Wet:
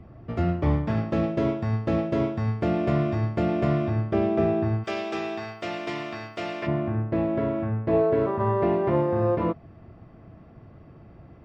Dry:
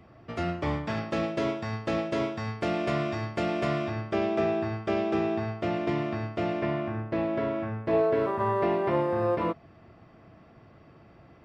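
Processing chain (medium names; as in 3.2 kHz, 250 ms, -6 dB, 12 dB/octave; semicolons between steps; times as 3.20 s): tilt EQ -3 dB/octave, from 4.83 s +3 dB/octave, from 6.66 s -2.5 dB/octave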